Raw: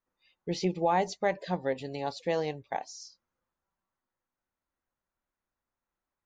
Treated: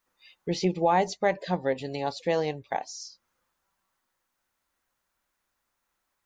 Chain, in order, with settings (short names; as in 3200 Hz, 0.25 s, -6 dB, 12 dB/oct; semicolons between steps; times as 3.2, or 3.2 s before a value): mismatched tape noise reduction encoder only; gain +3.5 dB